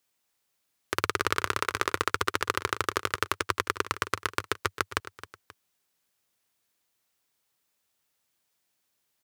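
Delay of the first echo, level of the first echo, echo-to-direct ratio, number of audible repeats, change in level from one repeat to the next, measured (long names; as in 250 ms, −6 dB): 266 ms, −14.5 dB, −13.5 dB, 2, −7.0 dB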